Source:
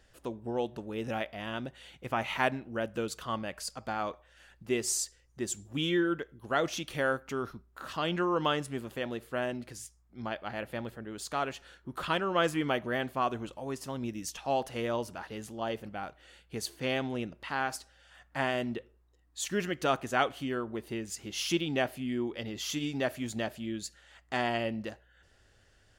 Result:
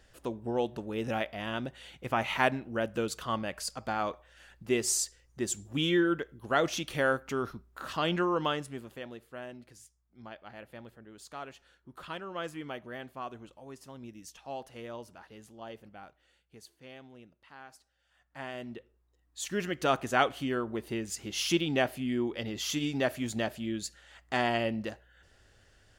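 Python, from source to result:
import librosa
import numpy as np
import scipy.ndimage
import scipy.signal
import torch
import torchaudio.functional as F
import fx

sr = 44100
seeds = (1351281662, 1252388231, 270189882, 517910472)

y = fx.gain(x, sr, db=fx.line((8.13, 2.0), (9.3, -10.0), (16.02, -10.0), (16.79, -18.0), (17.73, -18.0), (18.74, -7.0), (20.02, 2.0)))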